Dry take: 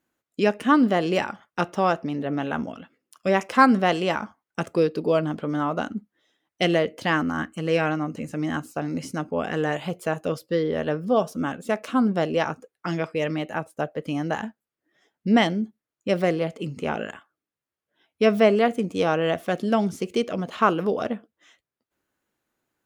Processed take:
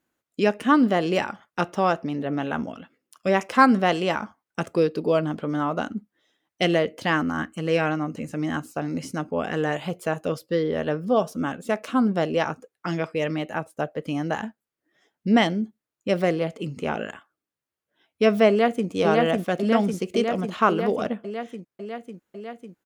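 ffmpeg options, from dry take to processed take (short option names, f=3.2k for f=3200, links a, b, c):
-filter_complex "[0:a]asplit=2[a][b];[b]afade=t=in:st=18.49:d=0.01,afade=t=out:st=18.89:d=0.01,aecho=0:1:550|1100|1650|2200|2750|3300|3850|4400|4950|5500|6050|6600:0.841395|0.631046|0.473285|0.354964|0.266223|0.199667|0.14975|0.112313|0.0842345|0.0631759|0.0473819|0.0355364[c];[a][c]amix=inputs=2:normalize=0"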